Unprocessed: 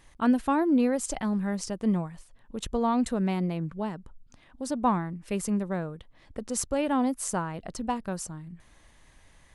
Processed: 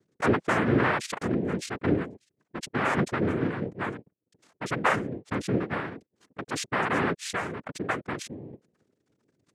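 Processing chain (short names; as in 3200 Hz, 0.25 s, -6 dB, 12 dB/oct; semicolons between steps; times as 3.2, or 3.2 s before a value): formant sharpening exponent 3; noise vocoder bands 3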